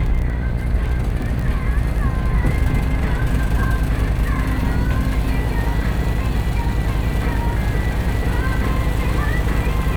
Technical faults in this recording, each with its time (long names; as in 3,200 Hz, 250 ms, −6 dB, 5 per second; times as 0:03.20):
mains buzz 60 Hz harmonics 26 −23 dBFS
surface crackle 11 per second −23 dBFS